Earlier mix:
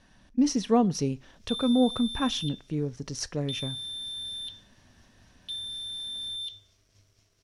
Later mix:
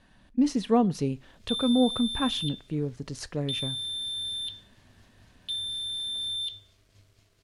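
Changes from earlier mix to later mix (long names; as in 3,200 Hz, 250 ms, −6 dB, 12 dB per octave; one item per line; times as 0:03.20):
background +4.0 dB
master: add parametric band 5,700 Hz −12 dB 0.25 octaves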